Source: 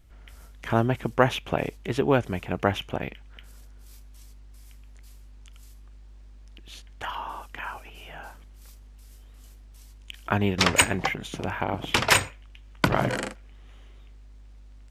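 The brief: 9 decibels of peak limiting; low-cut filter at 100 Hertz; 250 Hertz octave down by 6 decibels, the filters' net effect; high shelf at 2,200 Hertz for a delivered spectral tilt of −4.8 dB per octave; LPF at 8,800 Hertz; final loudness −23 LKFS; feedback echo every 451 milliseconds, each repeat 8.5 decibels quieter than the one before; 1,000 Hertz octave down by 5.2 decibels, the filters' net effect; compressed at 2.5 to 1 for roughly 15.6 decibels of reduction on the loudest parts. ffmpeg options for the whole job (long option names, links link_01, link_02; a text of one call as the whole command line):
ffmpeg -i in.wav -af "highpass=100,lowpass=8800,equalizer=frequency=250:width_type=o:gain=-7.5,equalizer=frequency=1000:width_type=o:gain=-4.5,highshelf=frequency=2200:gain=-8.5,acompressor=threshold=-44dB:ratio=2.5,alimiter=level_in=7.5dB:limit=-24dB:level=0:latency=1,volume=-7.5dB,aecho=1:1:451|902|1353|1804:0.376|0.143|0.0543|0.0206,volume=24dB" out.wav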